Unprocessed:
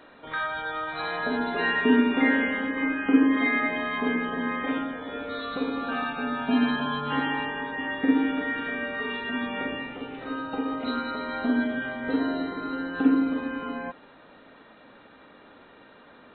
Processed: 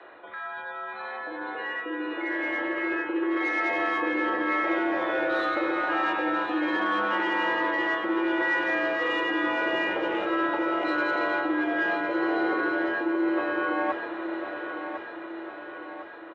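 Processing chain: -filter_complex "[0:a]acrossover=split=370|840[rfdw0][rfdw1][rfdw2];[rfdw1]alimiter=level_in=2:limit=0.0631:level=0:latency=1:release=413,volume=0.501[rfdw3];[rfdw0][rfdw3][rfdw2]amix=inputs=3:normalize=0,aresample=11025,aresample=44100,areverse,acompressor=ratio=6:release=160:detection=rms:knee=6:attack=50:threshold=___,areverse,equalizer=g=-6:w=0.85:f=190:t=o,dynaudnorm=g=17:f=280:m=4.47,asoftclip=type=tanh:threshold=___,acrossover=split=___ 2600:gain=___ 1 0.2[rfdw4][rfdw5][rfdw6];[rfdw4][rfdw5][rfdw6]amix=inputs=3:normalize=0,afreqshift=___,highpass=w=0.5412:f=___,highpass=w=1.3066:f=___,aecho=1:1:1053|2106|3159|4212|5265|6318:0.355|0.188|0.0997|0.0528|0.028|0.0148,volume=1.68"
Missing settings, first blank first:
0.01, 0.0631, 180, 0.224, 63, 42, 42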